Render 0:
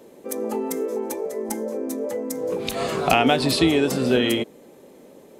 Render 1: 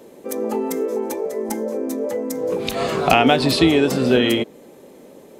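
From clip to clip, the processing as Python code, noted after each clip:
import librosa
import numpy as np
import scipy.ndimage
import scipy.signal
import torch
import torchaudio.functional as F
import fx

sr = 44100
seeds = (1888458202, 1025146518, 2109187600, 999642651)

y = fx.dynamic_eq(x, sr, hz=9900.0, q=0.85, threshold_db=-46.0, ratio=4.0, max_db=-5)
y = F.gain(torch.from_numpy(y), 3.5).numpy()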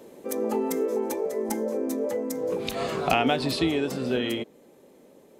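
y = fx.rider(x, sr, range_db=4, speed_s=2.0)
y = F.gain(torch.from_numpy(y), -7.5).numpy()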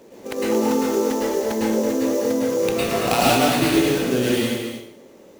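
y = fx.sample_hold(x, sr, seeds[0], rate_hz=6500.0, jitter_pct=20)
y = y + 10.0 ** (-8.0 / 20.0) * np.pad(y, (int(226 * sr / 1000.0), 0))[:len(y)]
y = fx.rev_plate(y, sr, seeds[1], rt60_s=0.64, hf_ratio=0.95, predelay_ms=95, drr_db=-5.5)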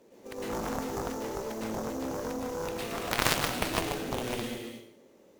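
y = fx.cheby_harmonics(x, sr, harmonics=(2, 3), levels_db=(-10, -7), full_scale_db=-4.5)
y = F.gain(torch.from_numpy(y), -2.5).numpy()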